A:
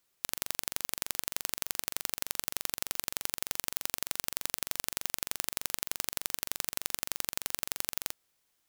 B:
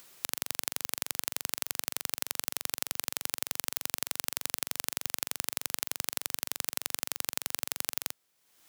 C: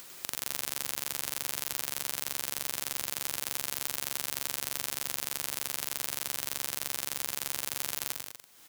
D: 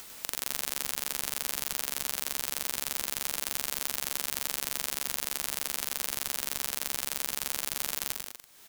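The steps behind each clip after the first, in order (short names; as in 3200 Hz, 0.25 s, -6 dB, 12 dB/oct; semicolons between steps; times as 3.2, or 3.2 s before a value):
upward compressor, threshold -41 dBFS; HPF 100 Hz 12 dB/oct; gain +1 dB
limiter -12 dBFS, peak gain reduction 11 dB; bouncing-ball echo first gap 0.1 s, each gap 0.8×, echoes 5; gain +7 dB
polarity switched at an audio rate 110 Hz; gain +1.5 dB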